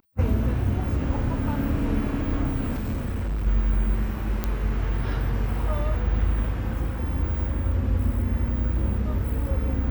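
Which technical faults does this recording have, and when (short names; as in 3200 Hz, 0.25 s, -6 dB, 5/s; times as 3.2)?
2.74–3.47 clipped -23.5 dBFS
4.44 pop -12 dBFS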